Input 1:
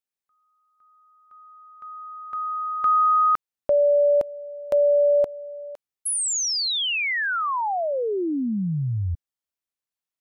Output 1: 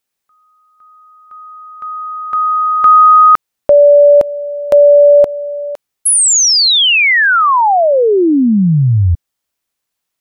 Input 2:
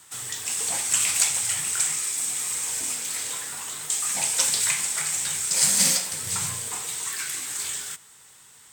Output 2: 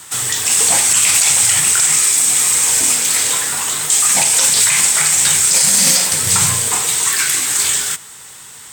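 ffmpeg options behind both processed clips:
-af "alimiter=level_in=16dB:limit=-1dB:release=50:level=0:latency=1,volume=-1dB"

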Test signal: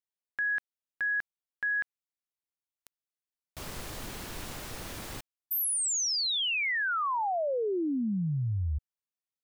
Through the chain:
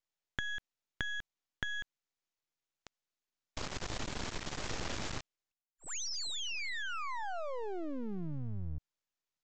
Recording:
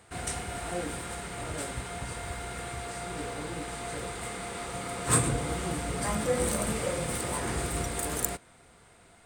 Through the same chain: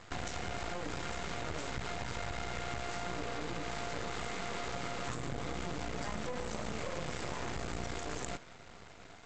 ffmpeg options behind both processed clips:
-af "acompressor=threshold=-43dB:ratio=12:attack=18:release=44:knee=1:detection=peak,aresample=16000,aeval=exprs='max(val(0),0)':c=same,aresample=44100,volume=8dB"

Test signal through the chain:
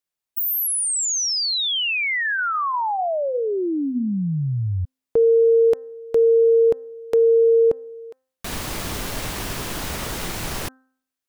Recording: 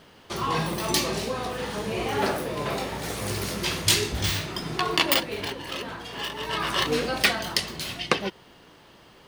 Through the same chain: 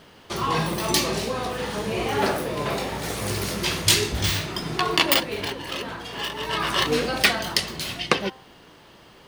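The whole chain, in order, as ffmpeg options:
-af "bandreject=f=260.5:t=h:w=4,bandreject=f=521:t=h:w=4,bandreject=f=781.5:t=h:w=4,bandreject=f=1.042k:t=h:w=4,bandreject=f=1.3025k:t=h:w=4,bandreject=f=1.563k:t=h:w=4,bandreject=f=1.8235k:t=h:w=4,volume=2.5dB"

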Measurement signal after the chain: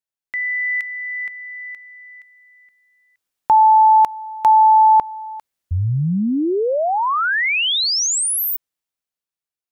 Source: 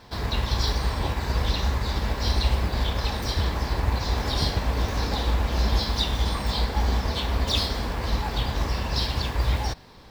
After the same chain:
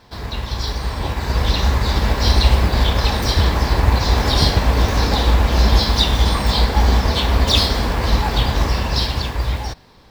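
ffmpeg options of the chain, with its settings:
-af "dynaudnorm=f=200:g=13:m=12.5dB"

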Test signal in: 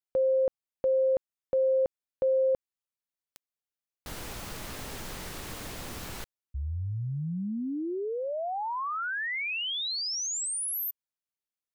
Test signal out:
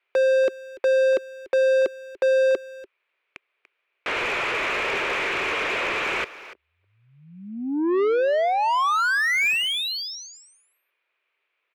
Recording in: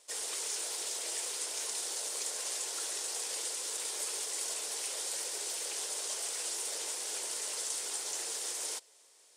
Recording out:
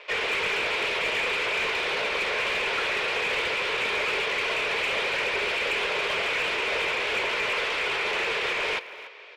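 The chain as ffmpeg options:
-filter_complex "[0:a]highpass=f=370:w=0.5412,highpass=f=370:w=1.3066,equalizer=f=390:t=q:w=4:g=5,equalizer=f=780:t=q:w=4:g=-7,equalizer=f=2.4k:t=q:w=4:g=10,lowpass=f=3.2k:w=0.5412,lowpass=f=3.2k:w=1.3066,asplit=2[a][b];[b]highpass=f=720:p=1,volume=27dB,asoftclip=type=tanh:threshold=-19.5dB[c];[a][c]amix=inputs=2:normalize=0,lowpass=f=2k:p=1,volume=-6dB,asplit=2[d][e];[e]adelay=290,highpass=300,lowpass=3.4k,asoftclip=type=hard:threshold=-29.5dB,volume=-14dB[f];[d][f]amix=inputs=2:normalize=0,volume=5dB"

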